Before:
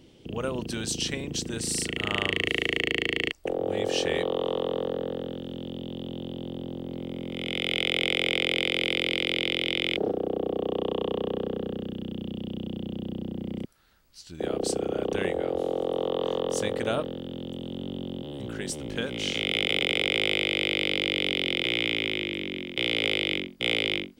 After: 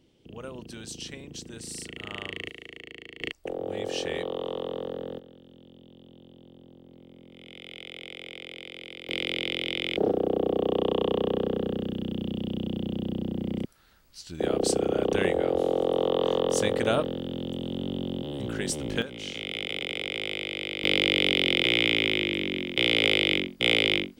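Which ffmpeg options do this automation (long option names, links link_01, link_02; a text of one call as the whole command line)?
ffmpeg -i in.wav -af "asetnsamples=nb_out_samples=441:pad=0,asendcmd='2.5 volume volume -17.5dB;3.21 volume volume -4.5dB;5.19 volume volume -16dB;9.09 volume volume -3dB;9.97 volume volume 3dB;19.02 volume volume -7dB;20.84 volume volume 3.5dB',volume=-9.5dB" out.wav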